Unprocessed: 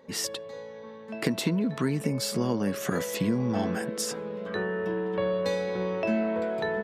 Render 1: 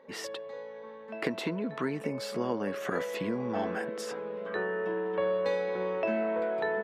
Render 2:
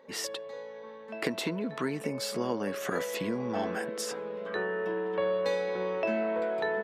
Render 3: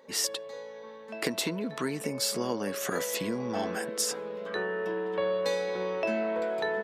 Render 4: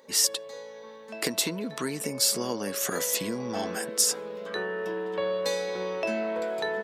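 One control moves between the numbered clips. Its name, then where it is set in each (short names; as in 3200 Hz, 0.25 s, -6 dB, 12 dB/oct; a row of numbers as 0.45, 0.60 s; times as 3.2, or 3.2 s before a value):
tone controls, treble: -15, -6, +3, +11 dB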